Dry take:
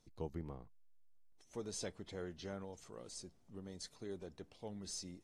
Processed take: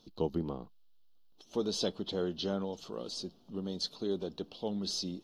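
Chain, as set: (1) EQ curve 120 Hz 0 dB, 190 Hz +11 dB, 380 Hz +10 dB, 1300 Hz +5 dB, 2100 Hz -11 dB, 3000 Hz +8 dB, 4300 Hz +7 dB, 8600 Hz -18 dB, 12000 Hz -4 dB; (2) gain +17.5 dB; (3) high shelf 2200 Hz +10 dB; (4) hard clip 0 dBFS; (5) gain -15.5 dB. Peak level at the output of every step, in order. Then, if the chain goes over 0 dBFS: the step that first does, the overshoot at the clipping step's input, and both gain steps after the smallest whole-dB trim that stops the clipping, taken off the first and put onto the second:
-21.0, -3.5, -3.0, -3.0, -18.5 dBFS; no overload

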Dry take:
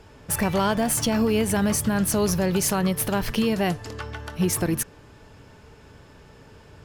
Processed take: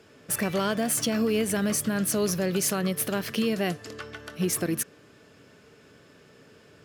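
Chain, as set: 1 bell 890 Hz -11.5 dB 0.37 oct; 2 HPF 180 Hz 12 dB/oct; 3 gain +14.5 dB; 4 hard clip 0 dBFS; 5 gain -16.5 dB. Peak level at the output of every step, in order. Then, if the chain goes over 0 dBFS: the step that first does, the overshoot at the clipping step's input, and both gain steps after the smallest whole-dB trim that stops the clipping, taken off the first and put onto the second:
-10.5, -11.0, +3.5, 0.0, -16.5 dBFS; step 3, 3.5 dB; step 3 +10.5 dB, step 5 -12.5 dB

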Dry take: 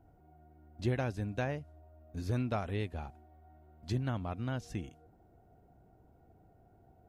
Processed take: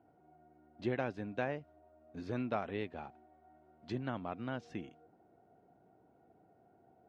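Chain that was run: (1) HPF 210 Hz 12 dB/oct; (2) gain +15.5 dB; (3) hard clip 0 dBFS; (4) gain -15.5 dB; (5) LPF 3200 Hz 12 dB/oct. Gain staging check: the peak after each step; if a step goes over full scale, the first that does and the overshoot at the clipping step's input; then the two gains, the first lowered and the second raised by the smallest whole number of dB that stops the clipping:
-20.5, -5.0, -5.0, -20.5, -21.0 dBFS; no overload

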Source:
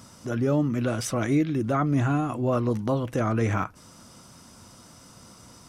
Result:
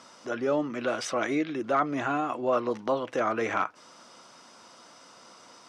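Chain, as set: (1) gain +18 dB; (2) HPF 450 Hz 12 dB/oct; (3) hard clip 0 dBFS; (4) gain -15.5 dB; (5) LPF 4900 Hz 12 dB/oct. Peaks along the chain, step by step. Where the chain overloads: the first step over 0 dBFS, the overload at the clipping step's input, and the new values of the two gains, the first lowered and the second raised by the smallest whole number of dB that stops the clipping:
+4.5, +4.0, 0.0, -15.5, -15.0 dBFS; step 1, 4.0 dB; step 1 +14 dB, step 4 -11.5 dB

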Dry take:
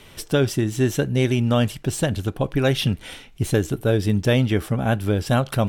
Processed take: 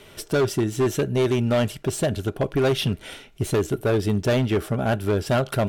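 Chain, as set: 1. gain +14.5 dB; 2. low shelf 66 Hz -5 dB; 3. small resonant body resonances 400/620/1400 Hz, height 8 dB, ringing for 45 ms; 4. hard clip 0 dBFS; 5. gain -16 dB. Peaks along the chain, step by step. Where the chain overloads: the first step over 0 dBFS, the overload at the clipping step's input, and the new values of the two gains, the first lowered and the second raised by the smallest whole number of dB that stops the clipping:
+7.0, +7.0, +10.0, 0.0, -16.0 dBFS; step 1, 10.0 dB; step 1 +4.5 dB, step 5 -6 dB

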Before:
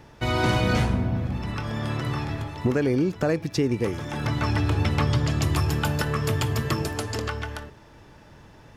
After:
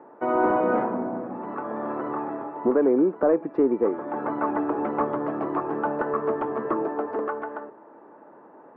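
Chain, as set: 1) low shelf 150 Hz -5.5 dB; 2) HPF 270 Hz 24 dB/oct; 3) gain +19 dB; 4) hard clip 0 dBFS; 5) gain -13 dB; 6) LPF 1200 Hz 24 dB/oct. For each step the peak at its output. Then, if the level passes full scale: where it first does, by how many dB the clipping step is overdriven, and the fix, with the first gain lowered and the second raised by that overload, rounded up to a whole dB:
-12.0, -12.5, +6.5, 0.0, -13.0, -11.5 dBFS; step 3, 6.5 dB; step 3 +12 dB, step 5 -6 dB

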